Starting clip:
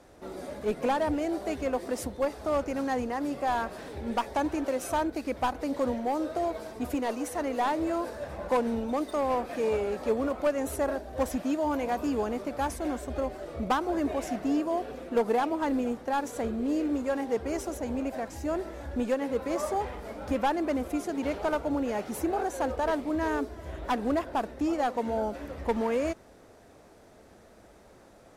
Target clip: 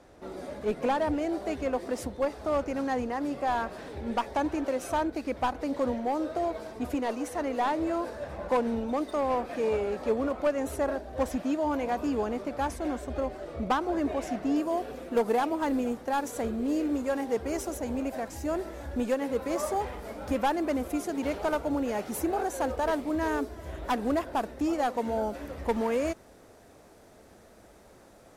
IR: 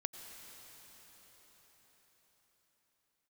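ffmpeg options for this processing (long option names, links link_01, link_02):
-af "asetnsamples=nb_out_samples=441:pad=0,asendcmd='14.56 highshelf g 6',highshelf=frequency=8300:gain=-7"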